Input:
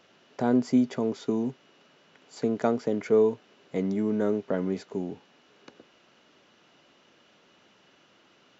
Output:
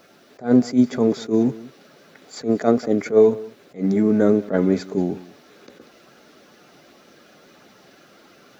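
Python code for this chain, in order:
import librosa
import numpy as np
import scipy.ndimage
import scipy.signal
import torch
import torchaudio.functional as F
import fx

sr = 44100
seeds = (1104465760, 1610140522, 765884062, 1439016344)

p1 = fx.spec_quant(x, sr, step_db=15)
p2 = fx.peak_eq(p1, sr, hz=2900.0, db=-10.5, octaves=0.22)
p3 = fx.notch(p2, sr, hz=960.0, q=7.8)
p4 = fx.rider(p3, sr, range_db=3, speed_s=0.5)
p5 = p3 + F.gain(torch.from_numpy(p4), -2.0).numpy()
p6 = fx.quant_dither(p5, sr, seeds[0], bits=12, dither='triangular')
p7 = p6 + fx.echo_single(p6, sr, ms=190, db=-20.5, dry=0)
p8 = fx.attack_slew(p7, sr, db_per_s=250.0)
y = F.gain(torch.from_numpy(p8), 5.0).numpy()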